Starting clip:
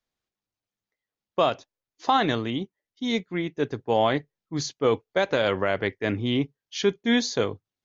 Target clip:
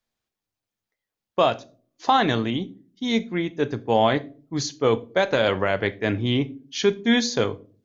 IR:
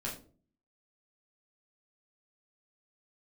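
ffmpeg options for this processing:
-filter_complex "[0:a]asplit=2[s0][s1];[1:a]atrim=start_sample=2205,highshelf=f=6400:g=9.5[s2];[s1][s2]afir=irnorm=-1:irlink=0,volume=0.2[s3];[s0][s3]amix=inputs=2:normalize=0,volume=1.19"

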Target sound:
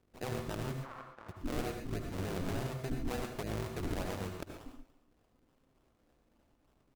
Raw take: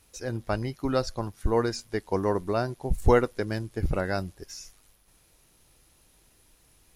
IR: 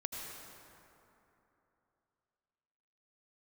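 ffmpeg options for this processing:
-filter_complex "[0:a]asettb=1/sr,asplit=3[s0][s1][s2];[s0]atrim=end=1.814[s3];[s1]atrim=start=1.81:end=2.67,asetpts=PTS-STARTPTS,afade=t=in:d=0.004:c=qsin,afade=t=out:st=0.856:d=0.004:c=qsin,aemphasis=mode=reproduction:type=riaa[s4];[s2]atrim=start=2.666[s5];[s3][s4]acrossfade=d=0.004:c1=hsin:c2=qsin[s6];[s6][s5]acrossfade=d=0.004:c1=qsin:c2=hsin,afwtdn=0.0355,acompressor=threshold=0.02:ratio=12,alimiter=level_in=3.76:limit=0.0631:level=0:latency=1:release=12,volume=0.266,acrusher=samples=39:mix=1:aa=0.000001:lfo=1:lforange=39:lforate=3.4,asplit=3[s7][s8][s9];[s7]afade=t=out:st=0.77:d=0.02[s10];[s8]bandpass=f=1100:t=q:w=2:csg=0,afade=t=in:st=0.77:d=0.02,afade=t=out:st=1.28:d=0.02[s11];[s9]afade=t=in:st=1.28:d=0.02[s12];[s10][s11][s12]amix=inputs=3:normalize=0,tremolo=f=270:d=1,aecho=1:1:288:0.0841[s13];[1:a]atrim=start_sample=2205,afade=t=out:st=0.21:d=0.01,atrim=end_sample=9702,asetrate=48510,aresample=44100[s14];[s13][s14]afir=irnorm=-1:irlink=0,volume=4.22"

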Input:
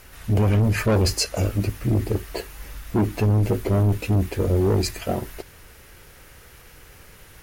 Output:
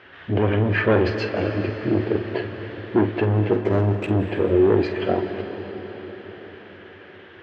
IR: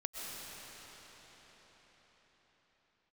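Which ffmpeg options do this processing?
-filter_complex "[0:a]highpass=f=110:w=0.5412,highpass=f=110:w=1.3066,equalizer=f=130:t=q:w=4:g=-10,equalizer=f=200:t=q:w=4:g=-6,equalizer=f=350:t=q:w=4:g=5,equalizer=f=1700:t=q:w=4:g=8,equalizer=f=3200:t=q:w=4:g=8,lowpass=f=3700:w=0.5412,lowpass=f=3700:w=1.3066,asettb=1/sr,asplit=3[s0][s1][s2];[s0]atrim=end=3.534[s3];[s1]atrim=start=3.53:end=4.08,asetpts=PTS-STARTPTS,afade=t=in:d=0.004:c=qsin,afade=t=out:st=0.546:d=0.004:c=qsin,adynamicsmooth=sensitivity=5.5:basefreq=690[s4];[s2]atrim=start=4.076[s5];[s3][s4]acrossfade=d=0.004:c1=hsin:c2=qsin[s6];[s6][s5]acrossfade=d=0.004:c1=qsin:c2=hsin,aemphasis=mode=reproduction:type=75fm,asplit=2[s7][s8];[1:a]atrim=start_sample=2205,adelay=47[s9];[s8][s9]afir=irnorm=-1:irlink=0,volume=0.398[s10];[s7][s10]amix=inputs=2:normalize=0,volume=1.19"

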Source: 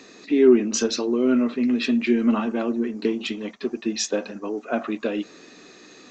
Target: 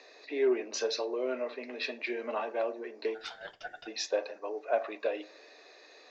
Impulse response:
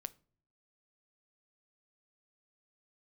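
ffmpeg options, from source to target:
-filter_complex "[0:a]highpass=f=480:w=0.5412,highpass=f=480:w=1.3066,equalizer=f=610:t=q:w=4:g=5,equalizer=f=1300:t=q:w=4:g=-9,equalizer=f=3100:t=q:w=4:g=-9,lowpass=f=4900:w=0.5412,lowpass=f=4900:w=1.3066,asplit=3[s0][s1][s2];[s0]afade=t=out:st=3.14:d=0.02[s3];[s1]aeval=exprs='val(0)*sin(2*PI*1100*n/s)':c=same,afade=t=in:st=3.14:d=0.02,afade=t=out:st=3.86:d=0.02[s4];[s2]afade=t=in:st=3.86:d=0.02[s5];[s3][s4][s5]amix=inputs=3:normalize=0[s6];[1:a]atrim=start_sample=2205[s7];[s6][s7]afir=irnorm=-1:irlink=0"

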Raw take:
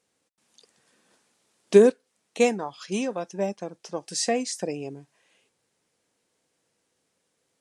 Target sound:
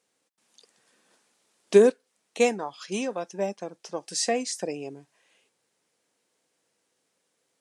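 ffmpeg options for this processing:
-af "highpass=f=240:p=1"

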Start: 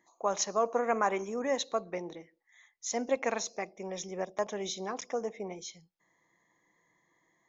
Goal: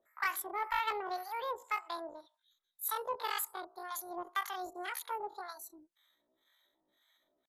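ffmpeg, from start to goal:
-filter_complex "[0:a]acrossover=split=440[s0][s1];[s0]aeval=exprs='val(0)*(1-1/2+1/2*cos(2*PI*1.9*n/s))':c=same[s2];[s1]aeval=exprs='val(0)*(1-1/2-1/2*cos(2*PI*1.9*n/s))':c=same[s3];[s2][s3]amix=inputs=2:normalize=0,asoftclip=type=tanh:threshold=0.0562,asetrate=83250,aresample=44100,atempo=0.529732,volume=1.19"

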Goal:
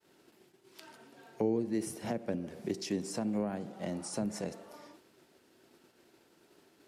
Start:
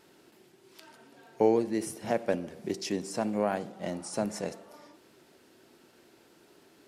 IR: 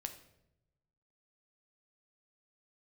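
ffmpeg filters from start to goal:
-filter_complex "[0:a]agate=range=0.0224:threshold=0.002:ratio=3:detection=peak,acrossover=split=330[s0][s1];[s1]acompressor=threshold=0.0141:ratio=12[s2];[s0][s2]amix=inputs=2:normalize=0"

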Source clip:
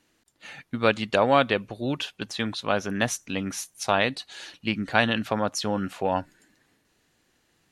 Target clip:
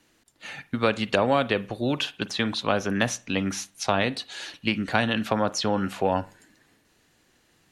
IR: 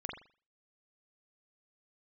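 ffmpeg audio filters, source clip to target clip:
-filter_complex "[0:a]acrossover=split=380|6600[s0][s1][s2];[s0]acompressor=threshold=0.0355:ratio=4[s3];[s1]acompressor=threshold=0.0562:ratio=4[s4];[s2]acompressor=threshold=0.00282:ratio=4[s5];[s3][s4][s5]amix=inputs=3:normalize=0,asplit=2[s6][s7];[1:a]atrim=start_sample=2205[s8];[s7][s8]afir=irnorm=-1:irlink=0,volume=0.188[s9];[s6][s9]amix=inputs=2:normalize=0,volume=1.41"

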